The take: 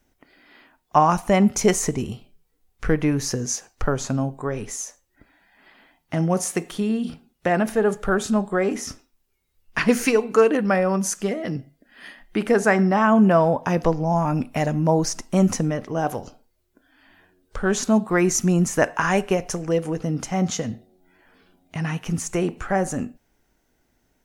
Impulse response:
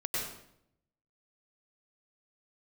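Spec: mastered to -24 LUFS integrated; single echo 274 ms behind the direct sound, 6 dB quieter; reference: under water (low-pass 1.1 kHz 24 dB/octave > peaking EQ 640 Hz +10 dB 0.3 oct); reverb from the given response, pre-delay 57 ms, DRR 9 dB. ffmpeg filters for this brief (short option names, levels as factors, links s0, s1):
-filter_complex "[0:a]aecho=1:1:274:0.501,asplit=2[s0][s1];[1:a]atrim=start_sample=2205,adelay=57[s2];[s1][s2]afir=irnorm=-1:irlink=0,volume=0.188[s3];[s0][s3]amix=inputs=2:normalize=0,lowpass=f=1100:w=0.5412,lowpass=f=1100:w=1.3066,equalizer=f=640:t=o:w=0.3:g=10,volume=0.562"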